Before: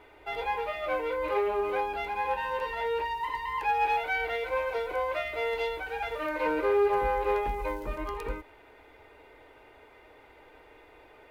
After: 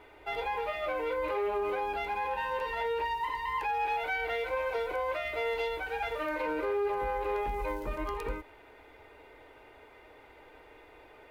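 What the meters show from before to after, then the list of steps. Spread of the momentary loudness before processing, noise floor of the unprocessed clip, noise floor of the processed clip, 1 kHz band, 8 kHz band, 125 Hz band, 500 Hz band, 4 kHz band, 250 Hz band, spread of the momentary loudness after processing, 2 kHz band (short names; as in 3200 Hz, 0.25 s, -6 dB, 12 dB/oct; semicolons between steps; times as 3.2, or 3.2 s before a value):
8 LU, -56 dBFS, -56 dBFS, -2.5 dB, n/a, -2.0 dB, -3.0 dB, -1.5 dB, -2.5 dB, 5 LU, -2.0 dB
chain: limiter -24.5 dBFS, peak gain reduction 7.5 dB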